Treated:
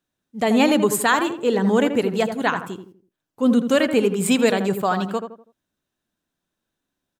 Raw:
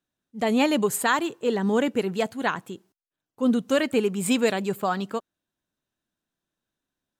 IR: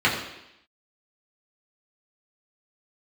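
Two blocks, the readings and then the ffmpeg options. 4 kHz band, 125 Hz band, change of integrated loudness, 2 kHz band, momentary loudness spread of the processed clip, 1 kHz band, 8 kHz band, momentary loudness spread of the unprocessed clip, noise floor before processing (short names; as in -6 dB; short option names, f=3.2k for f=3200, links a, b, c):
+4.0 dB, +5.5 dB, +5.0 dB, +4.5 dB, 10 LU, +4.5 dB, +4.0 dB, 8 LU, under -85 dBFS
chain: -filter_complex "[0:a]asplit=2[a][b];[b]adelay=82,lowpass=f=1.4k:p=1,volume=-7dB,asplit=2[c][d];[d]adelay=82,lowpass=f=1.4k:p=1,volume=0.38,asplit=2[e][f];[f]adelay=82,lowpass=f=1.4k:p=1,volume=0.38,asplit=2[g][h];[h]adelay=82,lowpass=f=1.4k:p=1,volume=0.38[i];[a][c][e][g][i]amix=inputs=5:normalize=0,volume=4dB"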